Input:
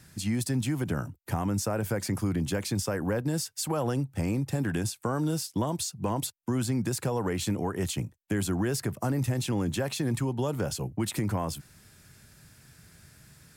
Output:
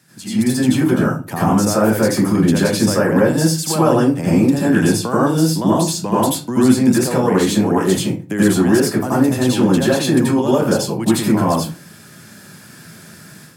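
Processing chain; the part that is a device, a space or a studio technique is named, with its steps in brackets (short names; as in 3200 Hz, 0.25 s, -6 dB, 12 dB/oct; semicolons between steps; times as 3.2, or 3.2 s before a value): far laptop microphone (reverb RT60 0.35 s, pre-delay 77 ms, DRR -7 dB; HPF 140 Hz 24 dB/oct; AGC gain up to 9 dB)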